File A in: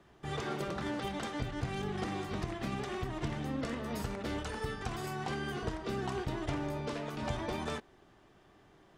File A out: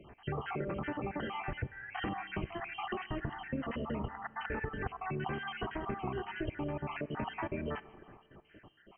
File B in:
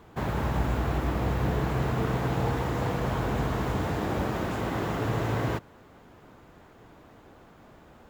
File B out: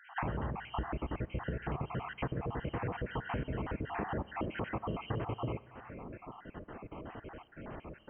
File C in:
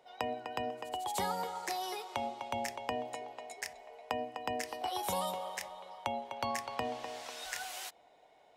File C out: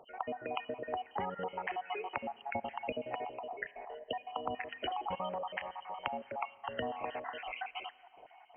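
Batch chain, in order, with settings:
time-frequency cells dropped at random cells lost 54%
downward compressor 12 to 1, threshold −41 dBFS
linear-phase brick-wall low-pass 3,200 Hz
four-comb reverb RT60 2.3 s, combs from 28 ms, DRR 18.5 dB
level +8 dB

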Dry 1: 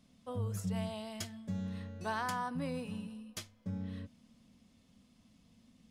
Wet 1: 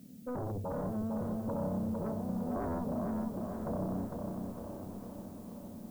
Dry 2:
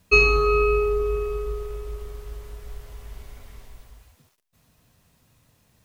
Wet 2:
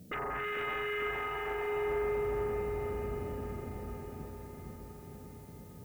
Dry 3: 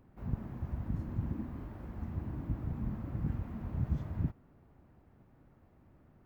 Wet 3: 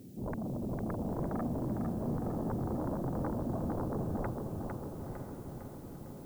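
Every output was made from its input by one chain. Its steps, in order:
high-pass filter 180 Hz 12 dB per octave
downward compressor 2 to 1, threshold −41 dBFS
Gaussian smoothing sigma 20 samples
sine wavefolder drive 15 dB, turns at −32.5 dBFS
background noise blue −64 dBFS
feedback delay with all-pass diffusion 982 ms, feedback 49%, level −10 dB
feedback echo at a low word length 454 ms, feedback 55%, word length 11 bits, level −4.5 dB
level −1 dB

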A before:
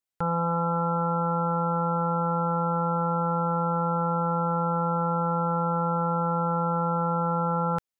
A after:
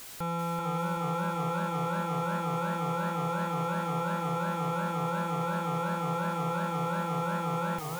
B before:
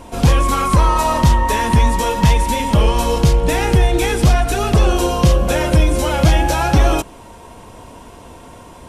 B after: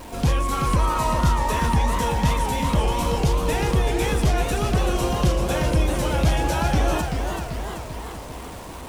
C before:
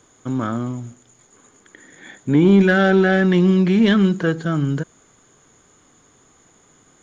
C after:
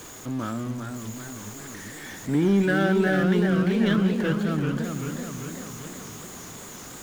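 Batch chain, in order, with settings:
converter with a step at zero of −28.5 dBFS
feedback echo with a swinging delay time 387 ms, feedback 60%, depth 165 cents, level −6 dB
level −8.5 dB

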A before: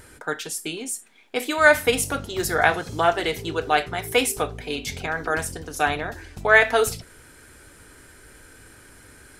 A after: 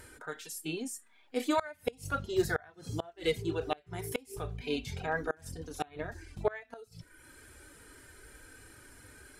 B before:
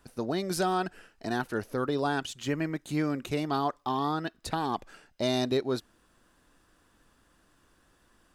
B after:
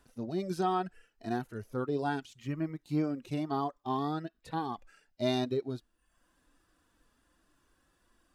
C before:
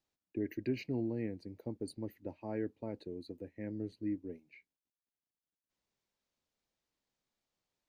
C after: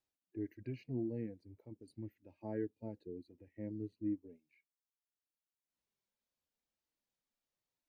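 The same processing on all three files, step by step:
reverb reduction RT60 0.61 s
harmonic and percussive parts rebalanced percussive −17 dB
gate with flip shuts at −17 dBFS, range −29 dB

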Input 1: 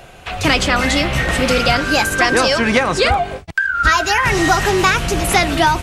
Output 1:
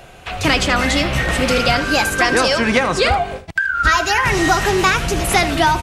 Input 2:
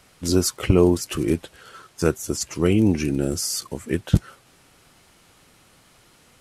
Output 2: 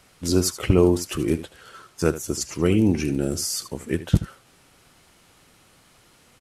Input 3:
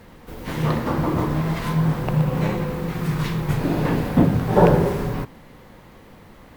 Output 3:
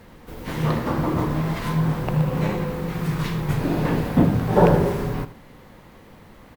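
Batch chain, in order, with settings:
single-tap delay 77 ms −14.5 dB
level −1 dB

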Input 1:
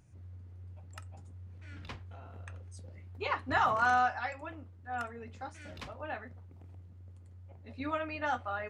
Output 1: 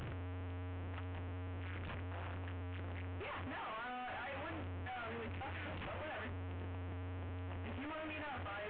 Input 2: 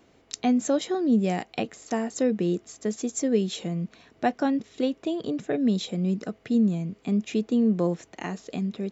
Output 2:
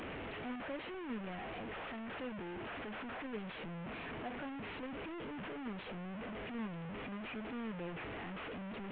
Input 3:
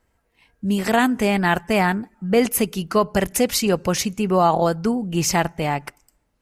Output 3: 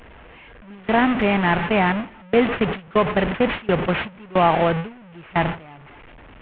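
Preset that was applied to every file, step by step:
linear delta modulator 16 kbit/s, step −17 dBFS
noise gate with hold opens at −10 dBFS

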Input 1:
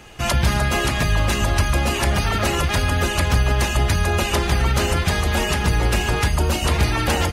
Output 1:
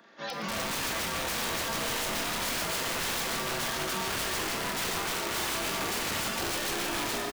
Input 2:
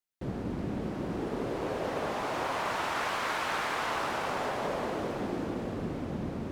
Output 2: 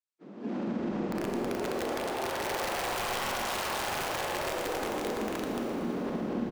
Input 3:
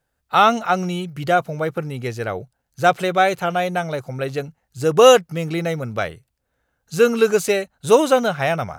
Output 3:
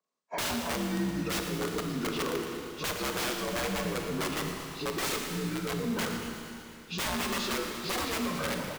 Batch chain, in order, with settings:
partials spread apart or drawn together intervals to 81%
automatic gain control gain up to 13.5 dB
noise reduction from a noise print of the clip's start 11 dB
Butterworth high-pass 180 Hz 48 dB per octave
wrap-around overflow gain 14 dB
downward compressor, threshold −25 dBFS
echo with shifted repeats 116 ms, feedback 62%, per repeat −61 Hz, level −17 dB
brickwall limiter −27 dBFS
four-comb reverb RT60 2.9 s, combs from 26 ms, DRR 3 dB

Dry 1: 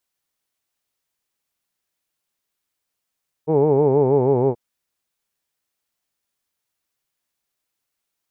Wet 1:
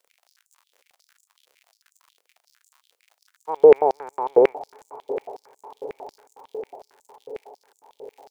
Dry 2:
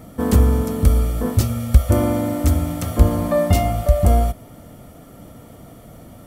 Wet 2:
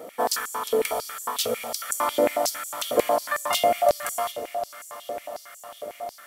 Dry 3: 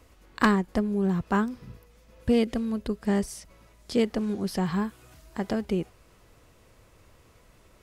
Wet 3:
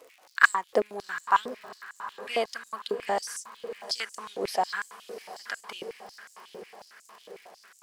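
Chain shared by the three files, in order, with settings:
feedback delay with all-pass diffusion 744 ms, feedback 67%, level −15 dB
surface crackle 93 per second −44 dBFS
high-pass on a step sequencer 11 Hz 480–7,200 Hz

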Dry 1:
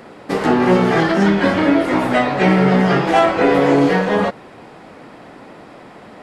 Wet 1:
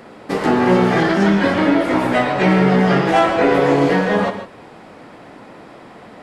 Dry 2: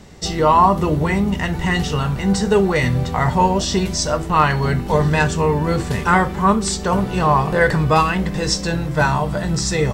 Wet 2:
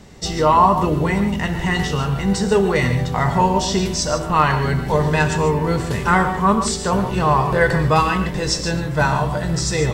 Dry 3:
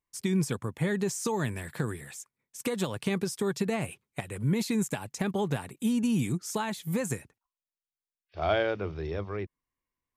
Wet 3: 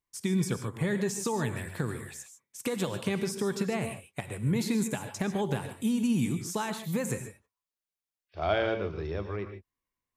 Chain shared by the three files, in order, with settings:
reverb whose tail is shaped and stops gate 170 ms rising, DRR 8 dB
level −1 dB

